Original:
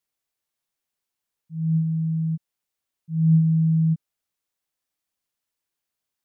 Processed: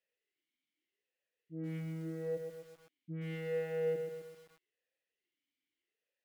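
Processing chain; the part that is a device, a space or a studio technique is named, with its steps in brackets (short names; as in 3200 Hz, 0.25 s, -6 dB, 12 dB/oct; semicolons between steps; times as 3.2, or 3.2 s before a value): de-hum 47.26 Hz, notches 21; talk box (tube stage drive 35 dB, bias 0.55; vowel sweep e-i 0.81 Hz); lo-fi delay 0.129 s, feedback 55%, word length 12-bit, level -6 dB; gain +14 dB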